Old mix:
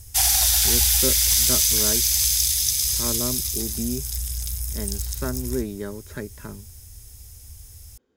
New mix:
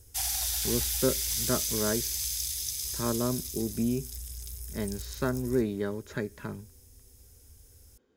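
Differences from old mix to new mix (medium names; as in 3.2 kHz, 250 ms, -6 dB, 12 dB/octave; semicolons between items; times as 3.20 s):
background -12.0 dB; reverb: on, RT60 0.40 s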